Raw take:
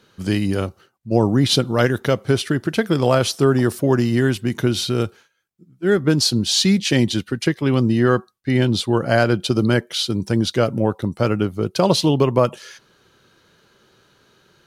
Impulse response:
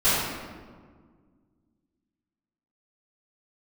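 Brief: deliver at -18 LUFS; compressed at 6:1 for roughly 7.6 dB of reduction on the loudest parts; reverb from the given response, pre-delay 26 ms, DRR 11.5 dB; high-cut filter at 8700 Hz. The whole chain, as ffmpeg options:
-filter_complex "[0:a]lowpass=8.7k,acompressor=threshold=-19dB:ratio=6,asplit=2[a][b];[1:a]atrim=start_sample=2205,adelay=26[c];[b][c]afir=irnorm=-1:irlink=0,volume=-29dB[d];[a][d]amix=inputs=2:normalize=0,volume=6dB"

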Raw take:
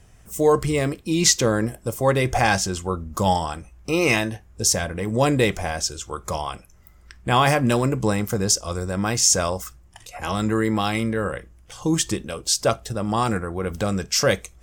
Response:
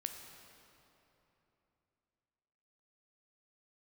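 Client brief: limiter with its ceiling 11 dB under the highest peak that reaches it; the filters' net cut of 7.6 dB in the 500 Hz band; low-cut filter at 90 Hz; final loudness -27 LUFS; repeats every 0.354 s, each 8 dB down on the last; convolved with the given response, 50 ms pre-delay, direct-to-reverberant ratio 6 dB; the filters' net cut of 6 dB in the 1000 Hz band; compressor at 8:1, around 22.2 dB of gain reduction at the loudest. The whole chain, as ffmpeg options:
-filter_complex "[0:a]highpass=90,equalizer=f=500:t=o:g=-8,equalizer=f=1k:t=o:g=-5,acompressor=threshold=-37dB:ratio=8,alimiter=level_in=7dB:limit=-24dB:level=0:latency=1,volume=-7dB,aecho=1:1:354|708|1062|1416|1770:0.398|0.159|0.0637|0.0255|0.0102,asplit=2[a][b];[1:a]atrim=start_sample=2205,adelay=50[c];[b][c]afir=irnorm=-1:irlink=0,volume=-4.5dB[d];[a][d]amix=inputs=2:normalize=0,volume=14dB"

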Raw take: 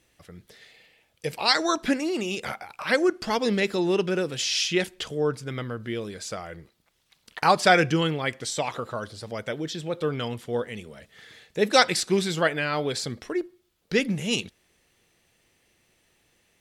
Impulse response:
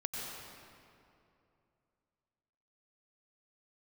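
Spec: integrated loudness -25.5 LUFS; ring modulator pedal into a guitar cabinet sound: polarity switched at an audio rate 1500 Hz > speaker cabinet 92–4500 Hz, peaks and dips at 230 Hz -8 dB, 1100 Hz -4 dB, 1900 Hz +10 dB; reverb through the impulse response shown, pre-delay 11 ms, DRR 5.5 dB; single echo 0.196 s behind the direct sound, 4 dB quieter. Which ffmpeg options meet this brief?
-filter_complex "[0:a]aecho=1:1:196:0.631,asplit=2[a][b];[1:a]atrim=start_sample=2205,adelay=11[c];[b][c]afir=irnorm=-1:irlink=0,volume=-8dB[d];[a][d]amix=inputs=2:normalize=0,aeval=exprs='val(0)*sgn(sin(2*PI*1500*n/s))':c=same,highpass=92,equalizer=f=230:t=q:w=4:g=-8,equalizer=f=1.1k:t=q:w=4:g=-4,equalizer=f=1.9k:t=q:w=4:g=10,lowpass=f=4.5k:w=0.5412,lowpass=f=4.5k:w=1.3066,volume=-7.5dB"

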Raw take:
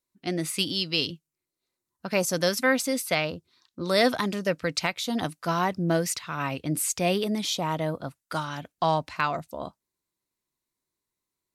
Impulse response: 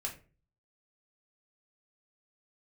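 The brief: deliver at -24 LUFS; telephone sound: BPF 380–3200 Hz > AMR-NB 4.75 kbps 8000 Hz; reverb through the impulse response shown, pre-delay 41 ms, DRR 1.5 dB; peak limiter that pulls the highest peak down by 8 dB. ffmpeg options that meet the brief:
-filter_complex "[0:a]alimiter=limit=-18dB:level=0:latency=1,asplit=2[a][b];[1:a]atrim=start_sample=2205,adelay=41[c];[b][c]afir=irnorm=-1:irlink=0,volume=-2dB[d];[a][d]amix=inputs=2:normalize=0,highpass=380,lowpass=3.2k,volume=9.5dB" -ar 8000 -c:a libopencore_amrnb -b:a 4750

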